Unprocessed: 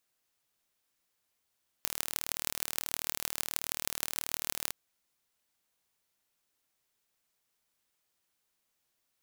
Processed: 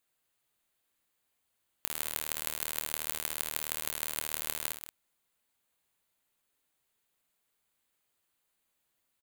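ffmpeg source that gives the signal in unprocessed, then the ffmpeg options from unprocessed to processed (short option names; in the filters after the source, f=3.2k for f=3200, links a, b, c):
-f lavfi -i "aevalsrc='0.794*eq(mod(n,1145),0)*(0.5+0.5*eq(mod(n,6870),0))':d=2.88:s=44100"
-filter_complex "[0:a]equalizer=f=5.5k:w=4:g=-10,asplit=2[a][b];[b]aecho=0:1:64.14|183.7:0.398|0.316[c];[a][c]amix=inputs=2:normalize=0"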